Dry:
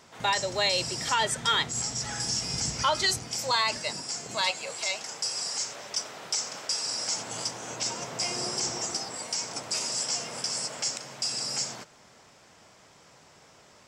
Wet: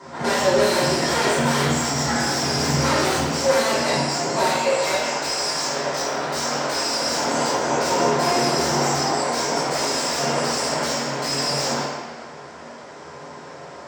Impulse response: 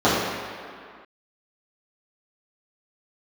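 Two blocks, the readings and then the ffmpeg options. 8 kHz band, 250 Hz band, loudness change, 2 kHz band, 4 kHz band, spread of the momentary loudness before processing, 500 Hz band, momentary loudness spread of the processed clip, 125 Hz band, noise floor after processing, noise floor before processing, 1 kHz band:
+4.0 dB, +18.0 dB, +8.0 dB, +9.0 dB, +4.0 dB, 7 LU, +15.5 dB, 18 LU, +14.0 dB, -39 dBFS, -56 dBFS, +10.5 dB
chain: -filter_complex "[0:a]aeval=exprs='0.0355*(abs(mod(val(0)/0.0355+3,4)-2)-1)':c=same[s0];[1:a]atrim=start_sample=2205,asetrate=57330,aresample=44100[s1];[s0][s1]afir=irnorm=-1:irlink=0,volume=0.531"

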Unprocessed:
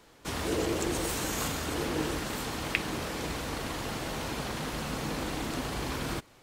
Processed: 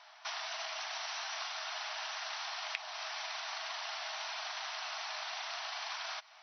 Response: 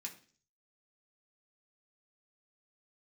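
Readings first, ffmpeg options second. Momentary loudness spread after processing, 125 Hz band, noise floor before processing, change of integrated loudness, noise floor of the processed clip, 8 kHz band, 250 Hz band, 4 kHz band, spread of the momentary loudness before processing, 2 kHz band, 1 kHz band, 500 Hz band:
1 LU, under -40 dB, -58 dBFS, -6.0 dB, -58 dBFS, -9.0 dB, under -40 dB, -0.5 dB, 5 LU, -3.5 dB, -4.5 dB, -15.0 dB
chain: -filter_complex "[0:a]afftfilt=real='re*between(b*sr/4096,610,6100)':imag='im*between(b*sr/4096,610,6100)':win_size=4096:overlap=0.75,acrossover=split=1100|3100[s0][s1][s2];[s0]acompressor=threshold=0.00224:ratio=4[s3];[s1]acompressor=threshold=0.00355:ratio=4[s4];[s2]acompressor=threshold=0.00447:ratio=4[s5];[s3][s4][s5]amix=inputs=3:normalize=0,volume=1.58"

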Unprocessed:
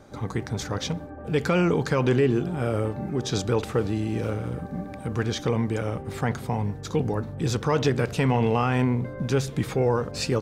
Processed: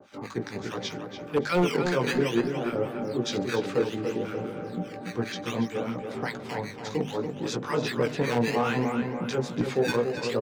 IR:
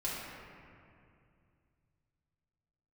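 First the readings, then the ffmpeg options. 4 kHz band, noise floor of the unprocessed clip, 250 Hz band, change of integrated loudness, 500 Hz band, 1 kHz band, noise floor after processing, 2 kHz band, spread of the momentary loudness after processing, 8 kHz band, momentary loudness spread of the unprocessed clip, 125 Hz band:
-0.5 dB, -39 dBFS, -2.5 dB, -3.0 dB, -1.5 dB, -2.0 dB, -41 dBFS, +0.5 dB, 9 LU, -4.5 dB, 9 LU, -9.0 dB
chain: -filter_complex "[0:a]flanger=delay=16.5:depth=4.1:speed=2.5,acrossover=split=640|1500[s0][s1][s2];[s0]acrusher=samples=12:mix=1:aa=0.000001:lfo=1:lforange=19.2:lforate=0.63[s3];[s3][s1][s2]amix=inputs=3:normalize=0,acrossover=split=160 6500:gain=0.0891 1 0.224[s4][s5][s6];[s4][s5][s6]amix=inputs=3:normalize=0,acrossover=split=1100[s7][s8];[s7]aeval=exprs='val(0)*(1-1/2+1/2*cos(2*PI*5*n/s))':c=same[s9];[s8]aeval=exprs='val(0)*(1-1/2-1/2*cos(2*PI*5*n/s))':c=same[s10];[s9][s10]amix=inputs=2:normalize=0,aeval=exprs='0.0944*(abs(mod(val(0)/0.0944+3,4)-2)-1)':c=same,bandreject=f=50:t=h:w=6,bandreject=f=100:t=h:w=6,bandreject=f=150:t=h:w=6,bandreject=f=200:t=h:w=6,bandreject=f=250:t=h:w=6,asplit=2[s11][s12];[s12]adelay=286,lowpass=f=2700:p=1,volume=0.501,asplit=2[s13][s14];[s14]adelay=286,lowpass=f=2700:p=1,volume=0.52,asplit=2[s15][s16];[s16]adelay=286,lowpass=f=2700:p=1,volume=0.52,asplit=2[s17][s18];[s18]adelay=286,lowpass=f=2700:p=1,volume=0.52,asplit=2[s19][s20];[s20]adelay=286,lowpass=f=2700:p=1,volume=0.52,asplit=2[s21][s22];[s22]adelay=286,lowpass=f=2700:p=1,volume=0.52[s23];[s13][s15][s17][s19][s21][s23]amix=inputs=6:normalize=0[s24];[s11][s24]amix=inputs=2:normalize=0,volume=1.88"

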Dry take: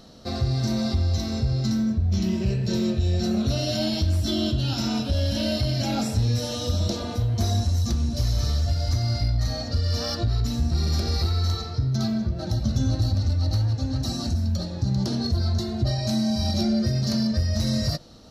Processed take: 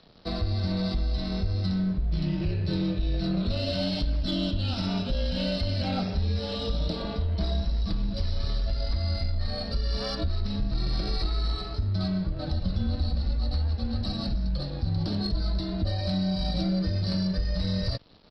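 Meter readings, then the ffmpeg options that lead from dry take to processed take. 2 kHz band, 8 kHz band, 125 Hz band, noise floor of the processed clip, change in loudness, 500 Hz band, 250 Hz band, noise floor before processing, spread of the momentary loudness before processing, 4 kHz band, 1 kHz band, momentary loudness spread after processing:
-2.5 dB, -18.5 dB, -5.5 dB, -34 dBFS, -4.5 dB, -3.5 dB, -4.0 dB, -32 dBFS, 3 LU, -3.5 dB, -3.5 dB, 3 LU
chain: -af "acompressor=threshold=0.0562:ratio=2,aresample=11025,aeval=exprs='sgn(val(0))*max(abs(val(0))-0.00335,0)':c=same,aresample=44100,afreqshift=-32,aeval=exprs='0.15*(cos(1*acos(clip(val(0)/0.15,-1,1)))-cos(1*PI/2))+0.00422*(cos(4*acos(clip(val(0)/0.15,-1,1)))-cos(4*PI/2))+0.00119*(cos(8*acos(clip(val(0)/0.15,-1,1)))-cos(8*PI/2))':c=same"

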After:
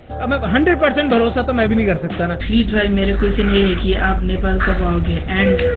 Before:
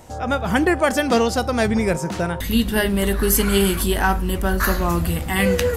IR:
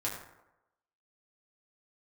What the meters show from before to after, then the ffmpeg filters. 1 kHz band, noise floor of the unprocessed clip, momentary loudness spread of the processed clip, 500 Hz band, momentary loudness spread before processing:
+1.0 dB, -29 dBFS, 4 LU, +4.0 dB, 5 LU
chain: -filter_complex "[0:a]asplit=2[s0][s1];[s1]asoftclip=type=tanh:threshold=0.106,volume=0.282[s2];[s0][s2]amix=inputs=2:normalize=0,aresample=8000,aresample=44100,asuperstop=centerf=960:order=4:qfactor=2.7,volume=1.41" -ar 48000 -c:a libopus -b:a 12k

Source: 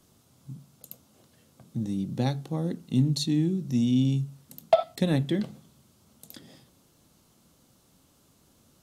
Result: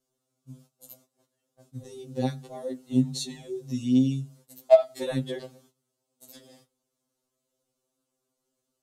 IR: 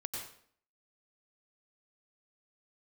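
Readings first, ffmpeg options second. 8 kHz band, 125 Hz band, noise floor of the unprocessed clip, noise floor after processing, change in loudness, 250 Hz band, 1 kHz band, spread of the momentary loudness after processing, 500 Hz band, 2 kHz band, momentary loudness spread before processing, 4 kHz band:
0.0 dB, -6.0 dB, -63 dBFS, -82 dBFS, +0.5 dB, -1.5 dB, -2.0 dB, 22 LU, +4.5 dB, -3.0 dB, 14 LU, -3.5 dB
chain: -af "equalizer=f=125:t=o:w=1:g=-8,equalizer=f=500:t=o:w=1:g=8,equalizer=f=8000:t=o:w=1:g=5,agate=range=0.141:threshold=0.002:ratio=16:detection=peak,afftfilt=real='re*2.45*eq(mod(b,6),0)':imag='im*2.45*eq(mod(b,6),0)':win_size=2048:overlap=0.75,volume=0.841"

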